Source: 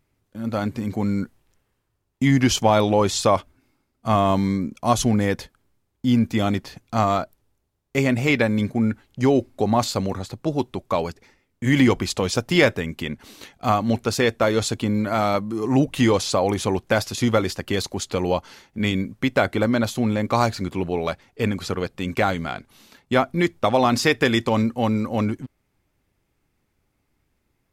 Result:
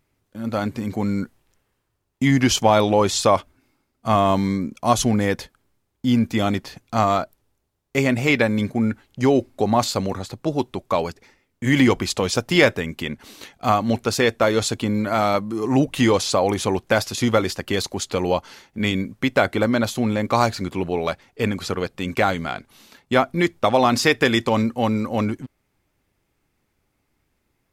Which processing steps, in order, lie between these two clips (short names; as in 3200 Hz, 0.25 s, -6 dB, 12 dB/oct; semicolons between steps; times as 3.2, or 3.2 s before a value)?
low shelf 240 Hz -3.5 dB; gain +2 dB